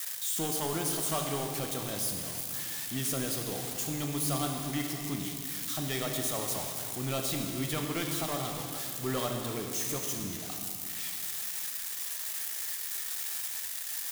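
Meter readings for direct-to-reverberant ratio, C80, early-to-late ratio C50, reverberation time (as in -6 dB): 2.0 dB, 4.0 dB, 3.0 dB, 2.4 s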